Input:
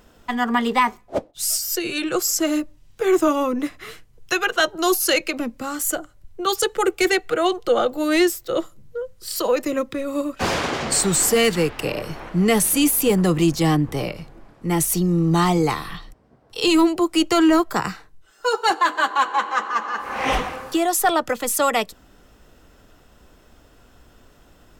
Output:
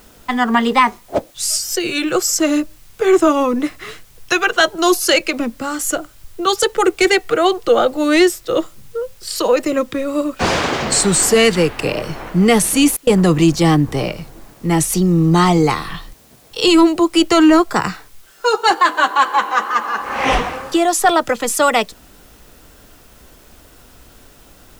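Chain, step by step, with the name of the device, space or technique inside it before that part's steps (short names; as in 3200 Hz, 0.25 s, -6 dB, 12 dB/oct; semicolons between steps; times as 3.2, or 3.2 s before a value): worn cassette (LPF 9500 Hz 12 dB/oct; wow and flutter; level dips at 12.97, 99 ms -29 dB; white noise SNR 34 dB); gain +5.5 dB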